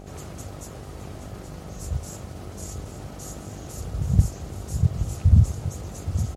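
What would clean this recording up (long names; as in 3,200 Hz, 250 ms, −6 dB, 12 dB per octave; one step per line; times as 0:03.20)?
hum removal 49.3 Hz, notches 16
echo removal 823 ms −10.5 dB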